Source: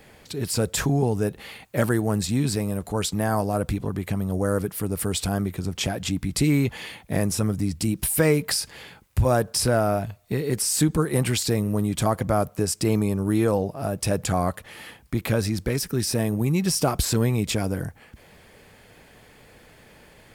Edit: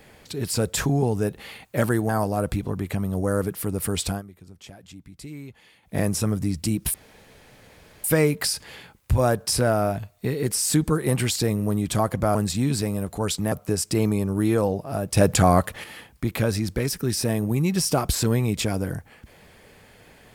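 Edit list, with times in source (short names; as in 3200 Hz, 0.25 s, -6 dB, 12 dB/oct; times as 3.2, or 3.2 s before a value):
2.09–3.26 move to 12.42
5.27–7.12 dip -18 dB, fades 0.13 s
8.11 insert room tone 1.10 s
14.07–14.74 gain +6.5 dB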